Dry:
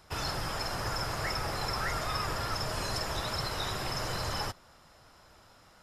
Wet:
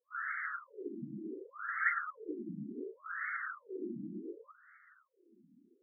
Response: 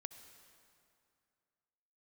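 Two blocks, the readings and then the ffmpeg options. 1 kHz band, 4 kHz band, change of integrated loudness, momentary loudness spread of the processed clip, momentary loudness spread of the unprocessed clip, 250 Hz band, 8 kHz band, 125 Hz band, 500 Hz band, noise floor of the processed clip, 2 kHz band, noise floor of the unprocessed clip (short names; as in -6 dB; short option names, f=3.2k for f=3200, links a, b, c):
-8.5 dB, under -40 dB, -6.5 dB, 13 LU, 2 LU, -0.5 dB, under -40 dB, -17.5 dB, -8.0 dB, -72 dBFS, 0.0 dB, -59 dBFS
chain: -af "highpass=130,flanger=delay=4.3:depth=5.6:regen=-36:speed=0.36:shape=triangular,asuperstop=centerf=760:order=8:qfactor=0.74,afftfilt=real='re*between(b*sr/1024,230*pow(1600/230,0.5+0.5*sin(2*PI*0.68*pts/sr))/1.41,230*pow(1600/230,0.5+0.5*sin(2*PI*0.68*pts/sr))*1.41)':imag='im*between(b*sr/1024,230*pow(1600/230,0.5+0.5*sin(2*PI*0.68*pts/sr))/1.41,230*pow(1600/230,0.5+0.5*sin(2*PI*0.68*pts/sr))*1.41)':win_size=1024:overlap=0.75,volume=10.5dB"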